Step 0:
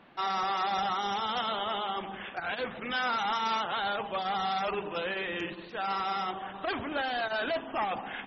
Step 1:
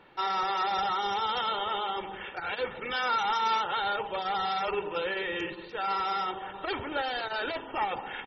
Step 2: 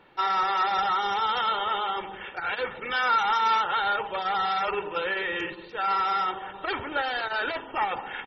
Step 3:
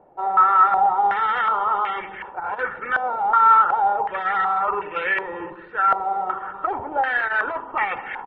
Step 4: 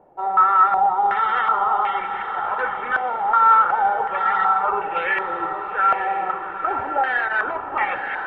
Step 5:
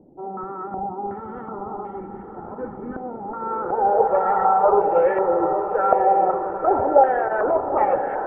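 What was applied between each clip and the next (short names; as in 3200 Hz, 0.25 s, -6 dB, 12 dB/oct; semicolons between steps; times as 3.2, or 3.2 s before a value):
comb 2.2 ms, depth 56%
dynamic EQ 1500 Hz, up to +6 dB, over -41 dBFS, Q 0.89
stepped low-pass 2.7 Hz 700–2100 Hz
diffused feedback echo 0.922 s, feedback 41%, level -7 dB
low-pass sweep 270 Hz -> 570 Hz, 3.26–4.13; gain +6.5 dB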